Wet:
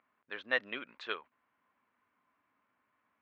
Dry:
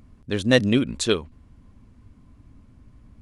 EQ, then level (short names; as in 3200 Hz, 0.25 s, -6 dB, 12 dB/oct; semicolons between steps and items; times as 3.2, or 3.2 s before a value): HPF 1400 Hz 12 dB/oct; LPF 1800 Hz 12 dB/oct; air absorption 200 m; 0.0 dB